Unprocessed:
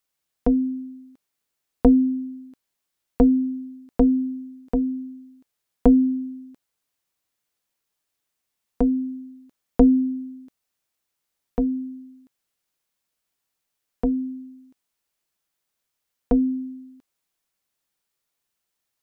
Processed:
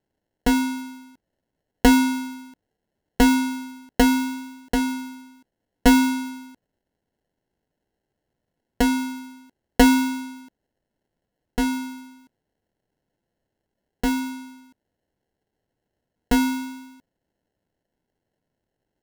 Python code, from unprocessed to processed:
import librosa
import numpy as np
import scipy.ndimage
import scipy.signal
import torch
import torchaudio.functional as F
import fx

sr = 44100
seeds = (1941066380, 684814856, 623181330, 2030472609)

y = fx.sample_hold(x, sr, seeds[0], rate_hz=1200.0, jitter_pct=0)
y = fx.vibrato(y, sr, rate_hz=0.73, depth_cents=7.5)